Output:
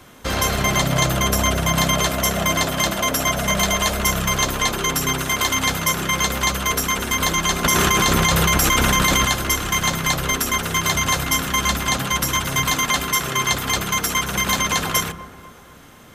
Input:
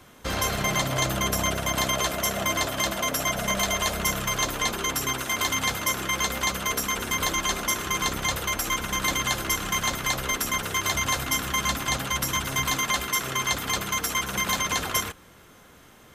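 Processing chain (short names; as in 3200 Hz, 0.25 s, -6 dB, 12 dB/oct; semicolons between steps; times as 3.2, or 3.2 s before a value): dark delay 0.244 s, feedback 50%, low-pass 1400 Hz, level -15 dB; on a send at -21.5 dB: reverb RT60 1.1 s, pre-delay 28 ms; 7.64–9.25 on the sum: fast leveller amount 100%; gain +5.5 dB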